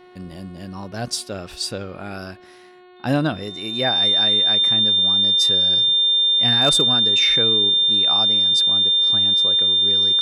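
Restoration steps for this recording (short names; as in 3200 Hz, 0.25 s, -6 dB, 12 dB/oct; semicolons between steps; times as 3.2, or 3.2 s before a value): clip repair -9 dBFS; de-hum 362.6 Hz, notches 12; notch 3600 Hz, Q 30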